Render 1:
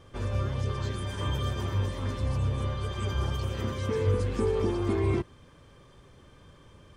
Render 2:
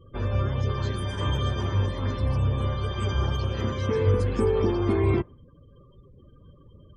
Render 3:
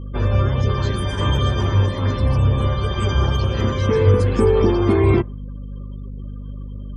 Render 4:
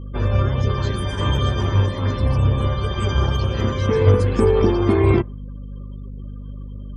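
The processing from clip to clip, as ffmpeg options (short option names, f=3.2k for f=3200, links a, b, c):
-af "afftdn=nr=35:nf=-50,volume=4dB"
-af "aeval=exprs='val(0)+0.0141*(sin(2*PI*50*n/s)+sin(2*PI*2*50*n/s)/2+sin(2*PI*3*50*n/s)/3+sin(2*PI*4*50*n/s)/4+sin(2*PI*5*50*n/s)/5)':c=same,volume=7.5dB"
-af "aeval=exprs='0.668*(cos(1*acos(clip(val(0)/0.668,-1,1)))-cos(1*PI/2))+0.0668*(cos(3*acos(clip(val(0)/0.668,-1,1)))-cos(3*PI/2))':c=same,volume=1.5dB"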